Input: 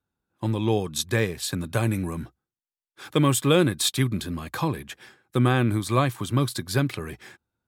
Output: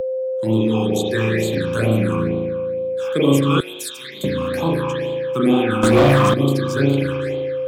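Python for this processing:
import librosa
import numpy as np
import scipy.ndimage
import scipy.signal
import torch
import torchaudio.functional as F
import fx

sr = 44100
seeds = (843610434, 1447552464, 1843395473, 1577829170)

y = scipy.signal.sosfilt(scipy.signal.bessel(2, 200.0, 'highpass', norm='mag', fs=sr, output='sos'), x)
y = fx.peak_eq(y, sr, hz=470.0, db=3.5, octaves=1.7)
y = fx.rev_spring(y, sr, rt60_s=1.4, pass_ms=(36,), chirp_ms=75, drr_db=-7.0)
y = fx.phaser_stages(y, sr, stages=8, low_hz=540.0, high_hz=1700.0, hz=2.2, feedback_pct=30)
y = y + 10.0 ** (-24.0 / 20.0) * np.sin(2.0 * np.pi * 520.0 * np.arange(len(y)) / sr)
y = fx.differentiator(y, sr, at=(3.6, 4.24))
y = fx.leveller(y, sr, passes=3, at=(5.83, 6.34))
y = fx.band_squash(y, sr, depth_pct=40)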